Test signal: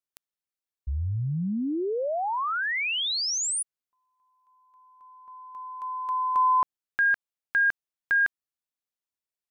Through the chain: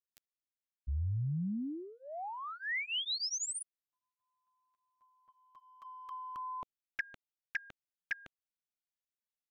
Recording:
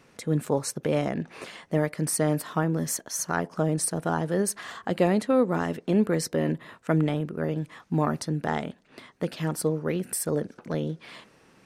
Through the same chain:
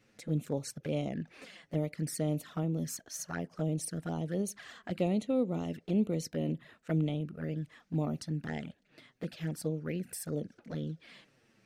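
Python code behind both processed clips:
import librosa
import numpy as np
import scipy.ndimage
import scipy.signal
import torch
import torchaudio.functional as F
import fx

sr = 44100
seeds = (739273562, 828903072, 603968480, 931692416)

y = fx.env_flanger(x, sr, rest_ms=10.0, full_db=-22.0)
y = fx.graphic_eq_15(y, sr, hz=(400, 1000, 10000), db=(-4, -10, -5))
y = y * 10.0 ** (-5.0 / 20.0)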